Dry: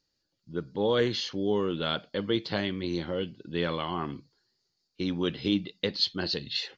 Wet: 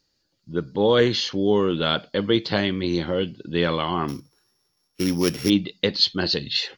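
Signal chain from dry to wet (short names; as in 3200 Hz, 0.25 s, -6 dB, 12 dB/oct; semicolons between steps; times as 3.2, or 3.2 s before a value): 4.08–5.5 sample sorter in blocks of 8 samples; gain +7.5 dB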